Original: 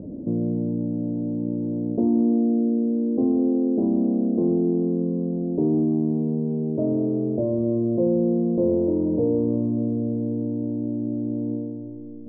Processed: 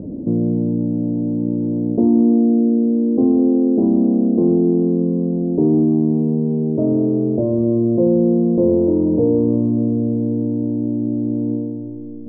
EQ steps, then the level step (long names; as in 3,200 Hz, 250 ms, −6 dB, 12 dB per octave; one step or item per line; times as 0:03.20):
parametric band 600 Hz −3.5 dB 0.36 octaves
+6.5 dB